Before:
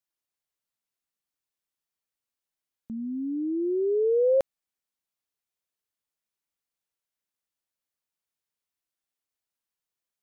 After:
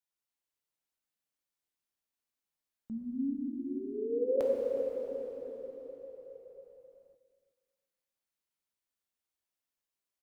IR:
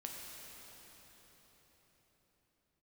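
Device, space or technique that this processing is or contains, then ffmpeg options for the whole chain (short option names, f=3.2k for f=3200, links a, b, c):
cathedral: -filter_complex "[0:a]asplit=3[a][b][c];[a]afade=t=out:st=3.33:d=0.02[d];[b]highpass=f=550:w=0.5412,highpass=f=550:w=1.3066,afade=t=in:st=3.33:d=0.02,afade=t=out:st=4.36:d=0.02[e];[c]afade=t=in:st=4.36:d=0.02[f];[d][e][f]amix=inputs=3:normalize=0[g];[1:a]atrim=start_sample=2205[h];[g][h]afir=irnorm=-1:irlink=0,equalizer=f=93:t=o:w=0.92:g=-3,asplit=2[i][j];[j]adelay=366,lowpass=f=850:p=1,volume=-12.5dB,asplit=2[k][l];[l]adelay=366,lowpass=f=850:p=1,volume=0.22,asplit=2[m][n];[n]adelay=366,lowpass=f=850:p=1,volume=0.22[o];[i][k][m][o]amix=inputs=4:normalize=0"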